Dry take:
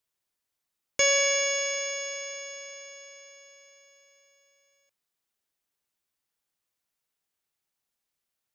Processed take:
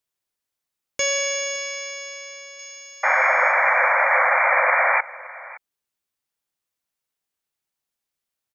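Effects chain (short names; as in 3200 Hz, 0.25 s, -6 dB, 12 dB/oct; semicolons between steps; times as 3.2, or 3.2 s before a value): 2.59–3.52 tilt +2 dB/oct; 3.03–5.01 painted sound noise 500–2400 Hz -18 dBFS; echo 0.566 s -19.5 dB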